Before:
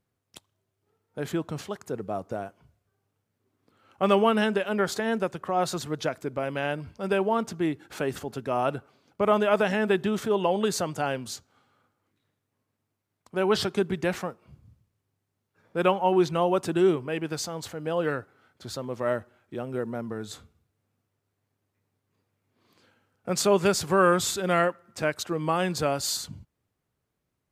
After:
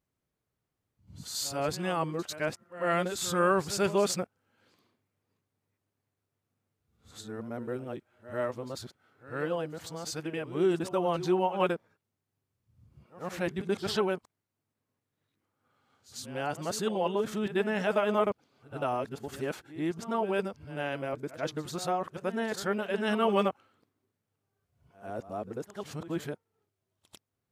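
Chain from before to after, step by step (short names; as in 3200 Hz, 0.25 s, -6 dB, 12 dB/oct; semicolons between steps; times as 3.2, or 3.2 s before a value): whole clip reversed; pre-echo 96 ms -15 dB; gain -5 dB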